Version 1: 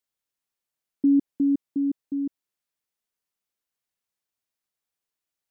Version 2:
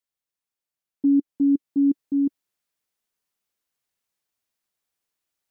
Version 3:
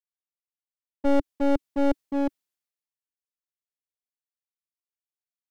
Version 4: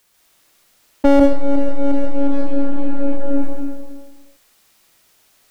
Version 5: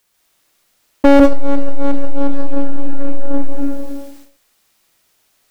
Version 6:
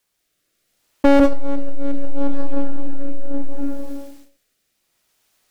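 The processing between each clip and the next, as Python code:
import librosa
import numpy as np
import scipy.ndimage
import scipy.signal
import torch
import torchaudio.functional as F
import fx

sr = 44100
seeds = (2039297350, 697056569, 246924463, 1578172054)

y1 = fx.dynamic_eq(x, sr, hz=290.0, q=3.2, threshold_db=-28.0, ratio=4.0, max_db=4)
y1 = fx.rider(y1, sr, range_db=4, speed_s=0.5)
y2 = np.minimum(y1, 2.0 * 10.0 ** (-23.0 / 20.0) - y1)
y2 = fx.band_widen(y2, sr, depth_pct=70)
y3 = fx.rev_freeverb(y2, sr, rt60_s=1.7, hf_ratio=0.8, predelay_ms=100, drr_db=-4.0)
y3 = fx.env_flatten(y3, sr, amount_pct=100)
y3 = y3 * librosa.db_to_amplitude(-5.0)
y4 = fx.leveller(y3, sr, passes=2)
y5 = fx.rotary(y4, sr, hz=0.7)
y5 = y5 * librosa.db_to_amplitude(-3.5)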